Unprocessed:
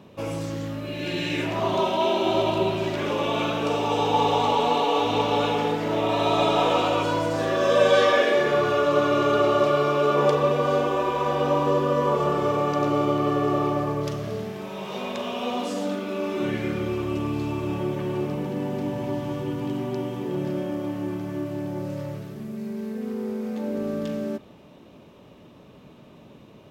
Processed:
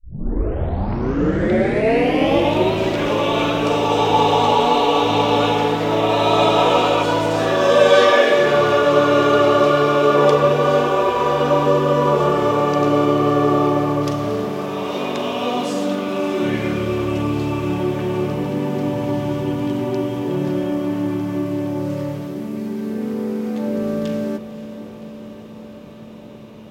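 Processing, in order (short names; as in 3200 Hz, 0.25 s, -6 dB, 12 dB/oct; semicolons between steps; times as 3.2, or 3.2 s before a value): tape start at the beginning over 2.73 s; diffused feedback echo 0.556 s, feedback 75%, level -13 dB; gain +6 dB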